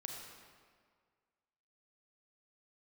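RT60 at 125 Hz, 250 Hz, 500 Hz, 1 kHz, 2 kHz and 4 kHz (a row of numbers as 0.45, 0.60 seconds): 1.8, 1.8, 1.9, 1.8, 1.6, 1.3 seconds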